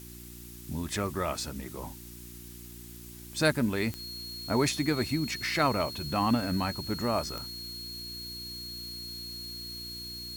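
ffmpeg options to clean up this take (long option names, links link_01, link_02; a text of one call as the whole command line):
ffmpeg -i in.wav -af "adeclick=threshold=4,bandreject=frequency=59.4:width_type=h:width=4,bandreject=frequency=118.8:width_type=h:width=4,bandreject=frequency=178.2:width_type=h:width=4,bandreject=frequency=237.6:width_type=h:width=4,bandreject=frequency=297:width_type=h:width=4,bandreject=frequency=356.4:width_type=h:width=4,bandreject=frequency=4300:width=30,afftdn=noise_reduction=30:noise_floor=-46" out.wav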